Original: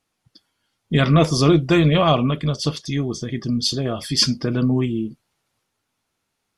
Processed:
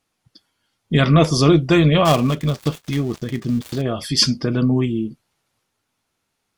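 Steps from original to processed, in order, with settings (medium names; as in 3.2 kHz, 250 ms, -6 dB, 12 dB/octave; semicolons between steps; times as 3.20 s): 2.05–3.82 s: dead-time distortion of 0.12 ms; trim +1.5 dB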